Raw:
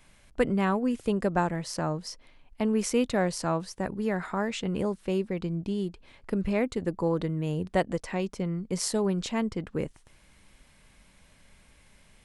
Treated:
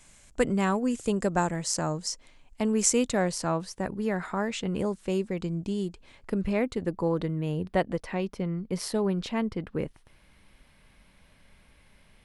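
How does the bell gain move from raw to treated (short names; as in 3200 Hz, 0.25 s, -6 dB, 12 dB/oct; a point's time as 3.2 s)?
bell 7300 Hz 0.72 oct
2.96 s +14 dB
3.41 s +2 dB
4.67 s +2 dB
5.22 s +9 dB
5.84 s +9 dB
6.71 s -3 dB
7.27 s -3 dB
7.81 s -10 dB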